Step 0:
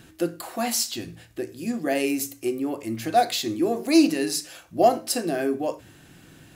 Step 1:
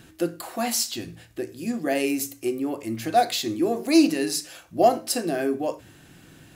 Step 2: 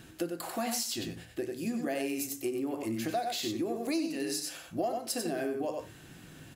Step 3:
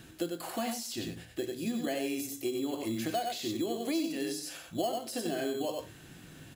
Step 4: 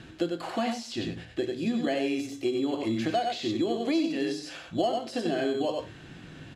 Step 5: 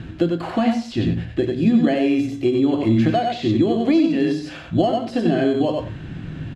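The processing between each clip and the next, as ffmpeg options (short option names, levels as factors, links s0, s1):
-af anull
-af "aecho=1:1:93:0.501,acompressor=threshold=0.0398:ratio=6,volume=0.794"
-filter_complex "[0:a]acrossover=split=830[s0][s1];[s0]acrusher=samples=12:mix=1:aa=0.000001[s2];[s1]alimiter=level_in=2.24:limit=0.0631:level=0:latency=1:release=27,volume=0.447[s3];[s2][s3]amix=inputs=2:normalize=0"
-af "lowpass=4200,volume=1.88"
-filter_complex "[0:a]bass=f=250:g=12,treble=f=4000:g=-9,bandreject=f=46.41:t=h:w=4,bandreject=f=92.82:t=h:w=4,bandreject=f=139.23:t=h:w=4,bandreject=f=185.64:t=h:w=4,bandreject=f=232.05:t=h:w=4,asplit=2[s0][s1];[s1]adelay=90,highpass=300,lowpass=3400,asoftclip=type=hard:threshold=0.0841,volume=0.2[s2];[s0][s2]amix=inputs=2:normalize=0,volume=2.11"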